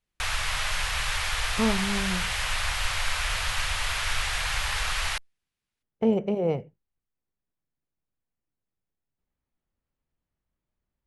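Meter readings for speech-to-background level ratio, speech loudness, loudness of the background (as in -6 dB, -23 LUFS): -0.5 dB, -28.0 LUFS, -27.5 LUFS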